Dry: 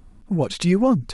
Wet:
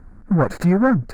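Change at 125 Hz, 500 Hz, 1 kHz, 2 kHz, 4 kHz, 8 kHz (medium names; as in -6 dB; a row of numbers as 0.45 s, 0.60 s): +3.5 dB, +1.0 dB, +4.0 dB, +8.0 dB, -14.0 dB, -8.0 dB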